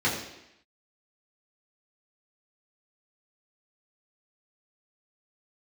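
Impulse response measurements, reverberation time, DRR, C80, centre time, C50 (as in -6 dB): 0.85 s, -7.5 dB, 7.0 dB, 40 ms, 5.0 dB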